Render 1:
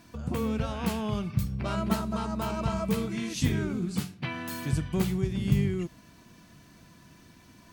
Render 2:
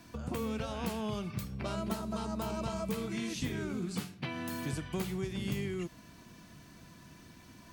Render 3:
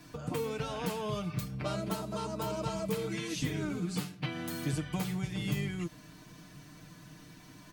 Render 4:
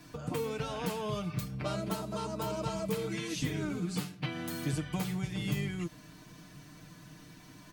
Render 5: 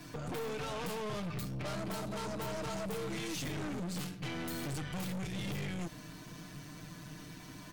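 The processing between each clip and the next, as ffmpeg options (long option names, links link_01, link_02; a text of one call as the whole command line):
ffmpeg -i in.wav -filter_complex "[0:a]acrossover=split=270|750|3300[link_01][link_02][link_03][link_04];[link_01]acompressor=threshold=-39dB:ratio=4[link_05];[link_02]acompressor=threshold=-38dB:ratio=4[link_06];[link_03]acompressor=threshold=-45dB:ratio=4[link_07];[link_04]acompressor=threshold=-45dB:ratio=4[link_08];[link_05][link_06][link_07][link_08]amix=inputs=4:normalize=0" out.wav
ffmpeg -i in.wav -af "aecho=1:1:6.6:0.8" out.wav
ffmpeg -i in.wav -af anull out.wav
ffmpeg -i in.wav -af "aeval=exprs='(tanh(126*val(0)+0.4)-tanh(0.4))/126':channel_layout=same,volume=5.5dB" out.wav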